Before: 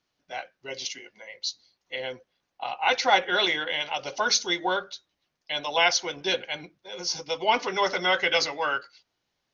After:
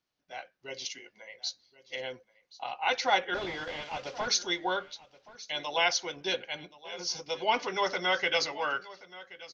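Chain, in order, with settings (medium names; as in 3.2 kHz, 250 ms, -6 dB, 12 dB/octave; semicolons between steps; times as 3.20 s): 3.34–4.28 s: one-bit delta coder 32 kbps, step -40 dBFS; level rider gain up to 3 dB; delay 1077 ms -19 dB; trim -7.5 dB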